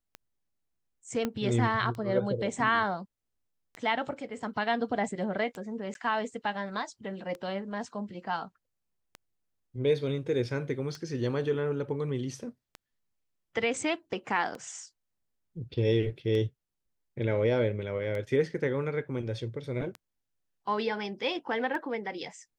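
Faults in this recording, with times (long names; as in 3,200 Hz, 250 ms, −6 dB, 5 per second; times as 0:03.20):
scratch tick 33 1/3 rpm −25 dBFS
0:01.25: click −16 dBFS
0:05.94–0:05.95: drop-out 12 ms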